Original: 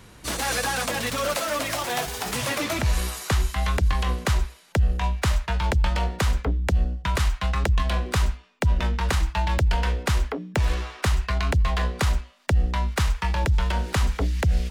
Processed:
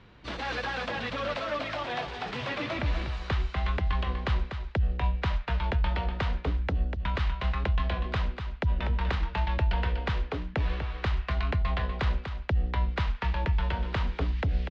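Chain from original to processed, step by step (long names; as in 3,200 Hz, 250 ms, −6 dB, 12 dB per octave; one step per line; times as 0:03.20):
low-pass filter 3,900 Hz 24 dB per octave
on a send: single-tap delay 244 ms −7.5 dB
on the sum: level −6 dB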